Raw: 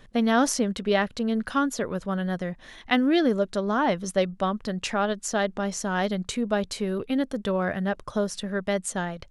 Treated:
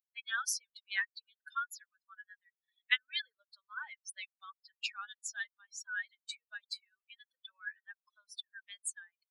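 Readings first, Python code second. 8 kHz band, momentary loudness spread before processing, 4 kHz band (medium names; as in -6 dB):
-8.5 dB, 8 LU, -6.5 dB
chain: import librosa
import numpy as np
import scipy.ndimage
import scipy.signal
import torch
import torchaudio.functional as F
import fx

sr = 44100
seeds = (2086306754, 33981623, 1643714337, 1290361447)

y = fx.bin_expand(x, sr, power=3.0)
y = scipy.signal.sosfilt(scipy.signal.butter(6, 1500.0, 'highpass', fs=sr, output='sos'), y)
y = fx.peak_eq(y, sr, hz=7000.0, db=-5.0, octaves=1.1)
y = y * librosa.db_to_amplitude(1.5)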